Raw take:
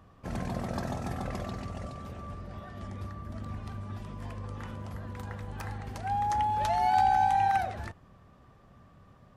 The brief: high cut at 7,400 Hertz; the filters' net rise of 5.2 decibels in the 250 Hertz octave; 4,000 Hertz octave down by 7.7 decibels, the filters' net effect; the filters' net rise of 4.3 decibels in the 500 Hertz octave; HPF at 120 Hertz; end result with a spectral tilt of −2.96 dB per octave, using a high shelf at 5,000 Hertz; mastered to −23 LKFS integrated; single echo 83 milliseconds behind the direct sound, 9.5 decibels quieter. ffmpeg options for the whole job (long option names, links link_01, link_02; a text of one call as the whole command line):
ffmpeg -i in.wav -af "highpass=120,lowpass=7400,equalizer=frequency=250:width_type=o:gain=6,equalizer=frequency=500:width_type=o:gain=5,equalizer=frequency=4000:width_type=o:gain=-8,highshelf=frequency=5000:gain=-4.5,aecho=1:1:83:0.335,volume=6.5dB" out.wav